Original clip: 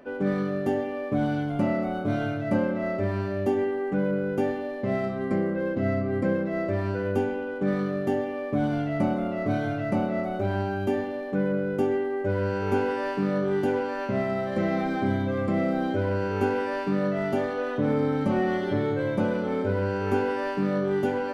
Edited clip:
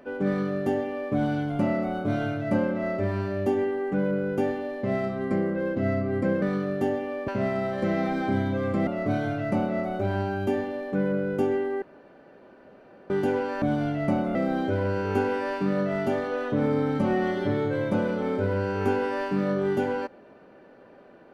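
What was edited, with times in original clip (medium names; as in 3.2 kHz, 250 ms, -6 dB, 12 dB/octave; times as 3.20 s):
6.42–7.68 s: delete
8.54–9.27 s: swap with 14.02–15.61 s
12.22–13.50 s: room tone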